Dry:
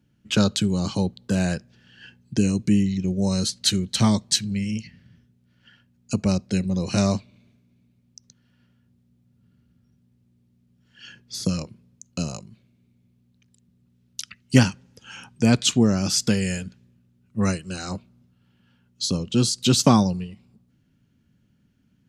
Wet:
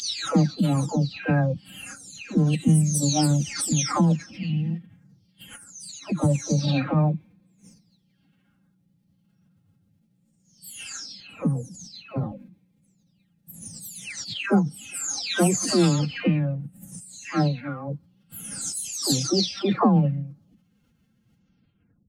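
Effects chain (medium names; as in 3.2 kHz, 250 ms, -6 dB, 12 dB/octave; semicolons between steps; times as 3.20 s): delay that grows with frequency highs early, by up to 702 ms; formant-preserving pitch shift +7.5 st; trim +2 dB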